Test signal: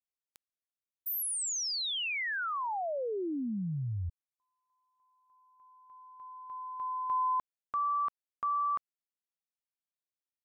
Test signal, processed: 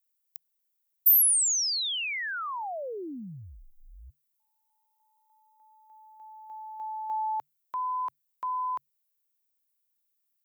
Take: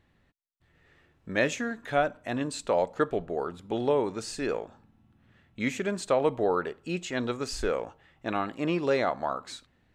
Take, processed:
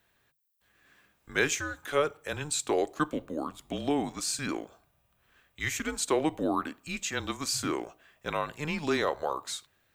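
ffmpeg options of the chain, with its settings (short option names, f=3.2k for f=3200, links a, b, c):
-af "afreqshift=-150,aemphasis=mode=production:type=bsi"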